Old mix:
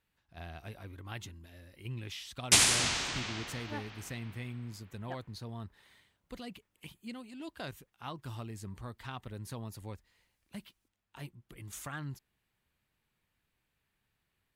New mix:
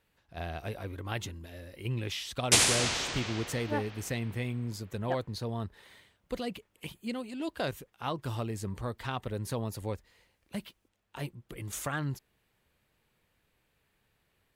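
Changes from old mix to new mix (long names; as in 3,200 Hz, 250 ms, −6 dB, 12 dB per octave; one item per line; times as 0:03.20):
speech +6.5 dB
master: add parametric band 500 Hz +6.5 dB 0.89 octaves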